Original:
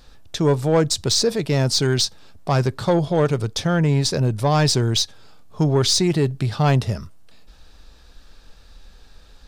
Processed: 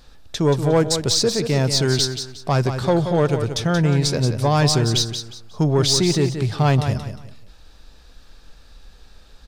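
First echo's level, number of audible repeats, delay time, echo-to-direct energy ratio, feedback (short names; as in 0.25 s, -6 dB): -8.5 dB, 3, 0.179 s, -8.0 dB, 28%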